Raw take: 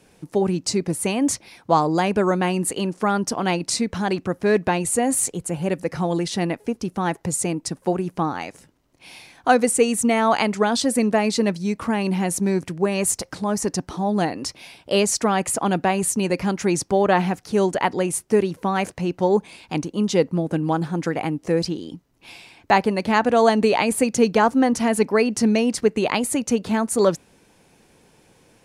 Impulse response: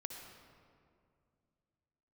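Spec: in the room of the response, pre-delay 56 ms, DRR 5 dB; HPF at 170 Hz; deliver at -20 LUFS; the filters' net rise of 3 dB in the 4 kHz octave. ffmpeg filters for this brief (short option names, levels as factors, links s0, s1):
-filter_complex "[0:a]highpass=170,equalizer=f=4000:t=o:g=4,asplit=2[s0][s1];[1:a]atrim=start_sample=2205,adelay=56[s2];[s1][s2]afir=irnorm=-1:irlink=0,volume=0.75[s3];[s0][s3]amix=inputs=2:normalize=0,volume=1.06"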